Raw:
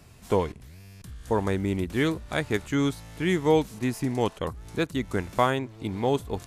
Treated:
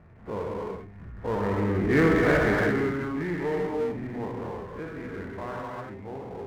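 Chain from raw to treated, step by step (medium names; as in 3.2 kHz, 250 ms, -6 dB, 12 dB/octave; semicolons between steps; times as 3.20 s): every event in the spectrogram widened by 60 ms; Doppler pass-by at 2.12 s, 9 m/s, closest 1.5 m; steep low-pass 2.1 kHz 48 dB/octave; gated-style reverb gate 390 ms flat, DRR -2.5 dB; power-law waveshaper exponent 0.7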